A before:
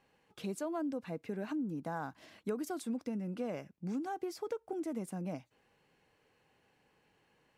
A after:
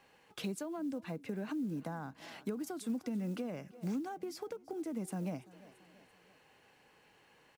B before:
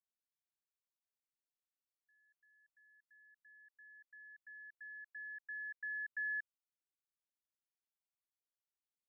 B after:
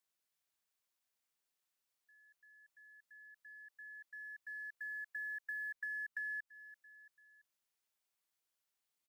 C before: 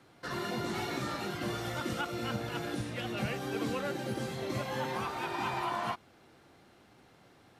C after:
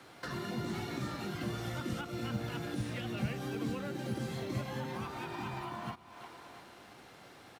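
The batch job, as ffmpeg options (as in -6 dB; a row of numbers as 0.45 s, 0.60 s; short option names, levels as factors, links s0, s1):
-filter_complex "[0:a]acrusher=bits=8:mode=log:mix=0:aa=0.000001,aecho=1:1:337|674|1011:0.0708|0.0347|0.017,acrossover=split=270[s0][s1];[s1]acompressor=threshold=0.00398:ratio=8[s2];[s0][s2]amix=inputs=2:normalize=0,lowshelf=f=390:g=-7,volume=2.51"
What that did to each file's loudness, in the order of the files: -0.5 LU, -0.5 LU, -3.0 LU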